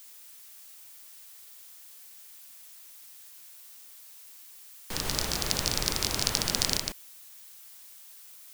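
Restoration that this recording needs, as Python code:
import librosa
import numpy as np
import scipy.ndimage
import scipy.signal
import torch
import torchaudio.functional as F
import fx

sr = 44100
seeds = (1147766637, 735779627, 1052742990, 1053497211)

y = fx.noise_reduce(x, sr, print_start_s=7.77, print_end_s=8.27, reduce_db=28.0)
y = fx.fix_echo_inverse(y, sr, delay_ms=147, level_db=-4.0)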